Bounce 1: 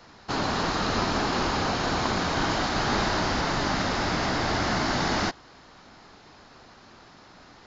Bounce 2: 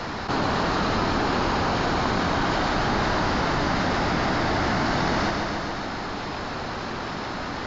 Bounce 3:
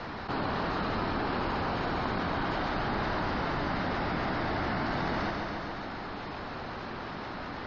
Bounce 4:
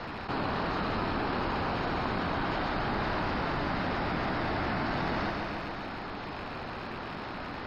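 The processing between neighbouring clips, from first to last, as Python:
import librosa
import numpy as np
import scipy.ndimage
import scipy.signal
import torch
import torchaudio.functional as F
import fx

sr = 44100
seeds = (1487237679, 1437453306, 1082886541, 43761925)

y1 = fx.high_shelf(x, sr, hz=5200.0, db=-11.5)
y1 = fx.echo_feedback(y1, sr, ms=139, feedback_pct=52, wet_db=-10.0)
y1 = fx.env_flatten(y1, sr, amount_pct=70)
y1 = y1 * librosa.db_to_amplitude(1.0)
y2 = fx.spec_gate(y1, sr, threshold_db=-30, keep='strong')
y2 = scipy.signal.sosfilt(scipy.signal.butter(2, 4100.0, 'lowpass', fs=sr, output='sos'), y2)
y2 = y2 * librosa.db_to_amplitude(-7.5)
y3 = fx.rattle_buzz(y2, sr, strikes_db=-42.0, level_db=-36.0)
y3 = fx.notch(y3, sr, hz=5900.0, q=16.0)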